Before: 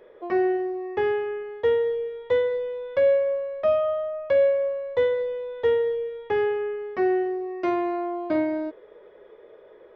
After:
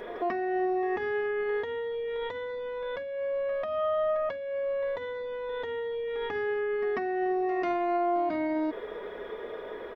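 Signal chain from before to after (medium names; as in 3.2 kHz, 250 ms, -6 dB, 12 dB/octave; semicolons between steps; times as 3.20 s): compressor with a negative ratio -31 dBFS, ratio -1; comb 4.2 ms, depth 40%; peak limiter -29.5 dBFS, peak gain reduction 11 dB; peaking EQ 500 Hz -9.5 dB 0.38 oct; pre-echo 143 ms -14 dB; trim +8.5 dB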